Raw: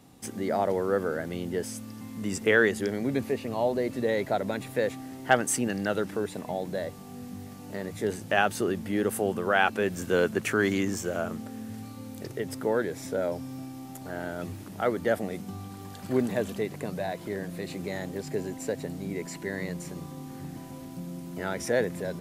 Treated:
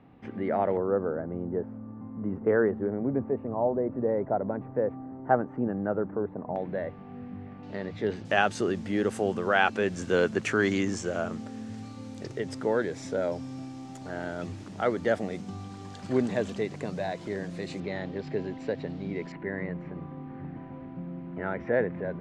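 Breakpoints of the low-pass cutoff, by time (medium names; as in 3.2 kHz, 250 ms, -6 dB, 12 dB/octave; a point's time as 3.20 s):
low-pass 24 dB/octave
2.5 kHz
from 0.77 s 1.2 kHz
from 6.56 s 2.4 kHz
from 7.63 s 4.2 kHz
from 8.25 s 7.3 kHz
from 17.80 s 4.1 kHz
from 19.32 s 2.2 kHz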